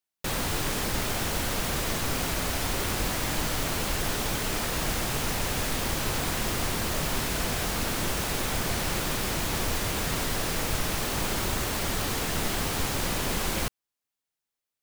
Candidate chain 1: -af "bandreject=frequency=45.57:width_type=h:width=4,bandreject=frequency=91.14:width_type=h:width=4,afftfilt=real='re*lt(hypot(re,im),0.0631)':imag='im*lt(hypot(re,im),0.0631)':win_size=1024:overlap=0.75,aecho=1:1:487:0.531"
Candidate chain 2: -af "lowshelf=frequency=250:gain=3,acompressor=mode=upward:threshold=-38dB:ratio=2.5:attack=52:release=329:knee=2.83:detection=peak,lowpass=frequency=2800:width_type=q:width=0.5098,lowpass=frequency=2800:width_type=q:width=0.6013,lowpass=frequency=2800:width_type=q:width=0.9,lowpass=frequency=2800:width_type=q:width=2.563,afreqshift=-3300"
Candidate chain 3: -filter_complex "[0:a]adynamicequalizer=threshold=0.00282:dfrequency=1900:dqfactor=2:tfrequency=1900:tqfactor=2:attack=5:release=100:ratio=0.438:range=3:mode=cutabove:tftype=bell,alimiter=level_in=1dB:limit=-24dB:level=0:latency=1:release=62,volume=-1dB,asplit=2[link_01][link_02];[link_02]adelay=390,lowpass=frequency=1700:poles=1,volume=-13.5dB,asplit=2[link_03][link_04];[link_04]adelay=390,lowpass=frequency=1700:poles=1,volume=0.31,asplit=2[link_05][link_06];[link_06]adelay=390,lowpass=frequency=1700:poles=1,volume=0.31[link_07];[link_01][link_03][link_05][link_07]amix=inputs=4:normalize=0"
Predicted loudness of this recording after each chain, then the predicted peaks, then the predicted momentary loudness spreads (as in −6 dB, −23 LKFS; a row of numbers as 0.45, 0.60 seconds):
−29.0, −24.5, −34.0 LKFS; −18.0, −14.5, −23.5 dBFS; 0, 1, 1 LU